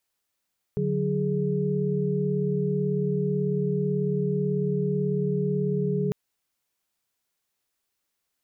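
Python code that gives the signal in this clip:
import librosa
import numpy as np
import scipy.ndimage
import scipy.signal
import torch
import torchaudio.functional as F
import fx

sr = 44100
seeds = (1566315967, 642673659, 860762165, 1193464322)

y = fx.chord(sr, length_s=5.35, notes=(50, 54, 68), wave='sine', level_db=-27.0)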